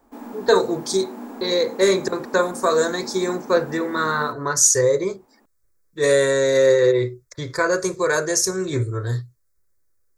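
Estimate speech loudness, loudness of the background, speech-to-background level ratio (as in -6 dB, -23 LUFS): -20.0 LUFS, -37.0 LUFS, 17.0 dB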